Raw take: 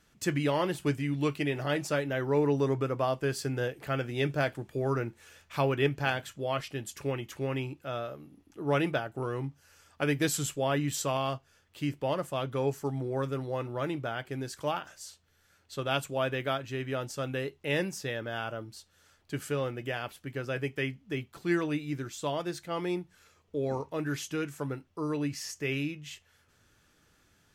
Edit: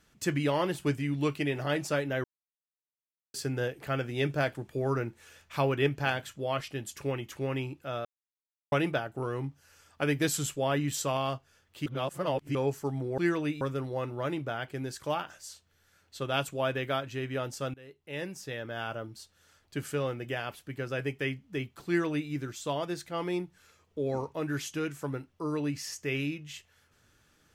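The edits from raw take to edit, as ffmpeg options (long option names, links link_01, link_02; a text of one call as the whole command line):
ffmpeg -i in.wav -filter_complex "[0:a]asplit=10[link_01][link_02][link_03][link_04][link_05][link_06][link_07][link_08][link_09][link_10];[link_01]atrim=end=2.24,asetpts=PTS-STARTPTS,afade=type=out:start_time=2.236:duration=0.004:curve=hsin[link_11];[link_02]atrim=start=2.24:end=3.34,asetpts=PTS-STARTPTS,volume=0[link_12];[link_03]atrim=start=3.34:end=8.05,asetpts=PTS-STARTPTS,afade=type=in:duration=0.004:curve=hsin,afade=type=out:start_time=4.706:duration=0.004:curve=hsin[link_13];[link_04]atrim=start=8.05:end=8.72,asetpts=PTS-STARTPTS,volume=0[link_14];[link_05]atrim=start=8.72:end=11.862,asetpts=PTS-STARTPTS,afade=type=in:duration=0.004:curve=hsin[link_15];[link_06]atrim=start=11.858:end=12.552,asetpts=PTS-STARTPTS,areverse[link_16];[link_07]atrim=start=12.548:end=13.182[link_17];[link_08]atrim=start=21.438:end=21.872[link_18];[link_09]atrim=start=13.178:end=17.31,asetpts=PTS-STARTPTS,afade=type=out:start_time=4.128:duration=0.004:curve=hsin:silence=0.0668344[link_19];[link_10]atrim=start=17.31,asetpts=PTS-STARTPTS,afade=type=in:duration=1.2:silence=0.0668344[link_20];[link_11][link_12][link_13][link_14][link_15]concat=n=5:v=0:a=1[link_21];[link_21][link_16]acrossfade=duration=0.004:curve1=hsin:curve2=hsin[link_22];[link_22][link_17]acrossfade=duration=0.004:curve1=hsin:curve2=hsin[link_23];[link_23][link_18]acrossfade=duration=0.004:curve1=hsin:curve2=hsin[link_24];[link_19][link_20]concat=n=2:v=0:a=1[link_25];[link_24][link_25]acrossfade=duration=0.004:curve1=hsin:curve2=hsin" out.wav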